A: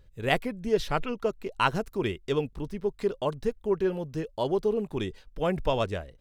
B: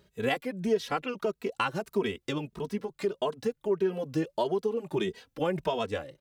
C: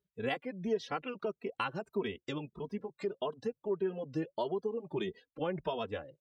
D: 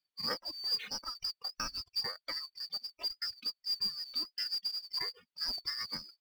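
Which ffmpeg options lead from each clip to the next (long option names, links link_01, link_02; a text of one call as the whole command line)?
ffmpeg -i in.wav -filter_complex "[0:a]highpass=170,acompressor=threshold=-31dB:ratio=6,asplit=2[link_01][link_02];[link_02]adelay=2.8,afreqshift=1.6[link_03];[link_01][link_03]amix=inputs=2:normalize=1,volume=8.5dB" out.wav
ffmpeg -i in.wav -af "afftdn=noise_reduction=23:noise_floor=-47,volume=-6dB" out.wav
ffmpeg -i in.wav -af "afftfilt=real='real(if(lt(b,272),68*(eq(floor(b/68),0)*1+eq(floor(b/68),1)*2+eq(floor(b/68),2)*3+eq(floor(b/68),3)*0)+mod(b,68),b),0)':imag='imag(if(lt(b,272),68*(eq(floor(b/68),0)*1+eq(floor(b/68),1)*2+eq(floor(b/68),2)*3+eq(floor(b/68),3)*0)+mod(b,68),b),0)':win_size=2048:overlap=0.75,lowpass=frequency=3500:width_type=q:width=1.7,acrusher=bits=4:mode=log:mix=0:aa=0.000001" out.wav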